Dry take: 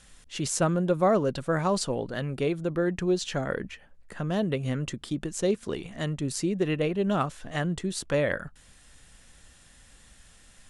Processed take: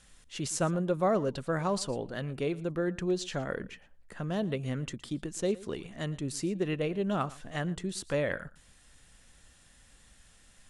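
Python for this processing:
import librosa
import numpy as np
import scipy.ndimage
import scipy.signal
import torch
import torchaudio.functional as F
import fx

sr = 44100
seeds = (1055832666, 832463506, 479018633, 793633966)

y = x + 10.0 ** (-20.0 / 20.0) * np.pad(x, (int(115 * sr / 1000.0), 0))[:len(x)]
y = F.gain(torch.from_numpy(y), -4.5).numpy()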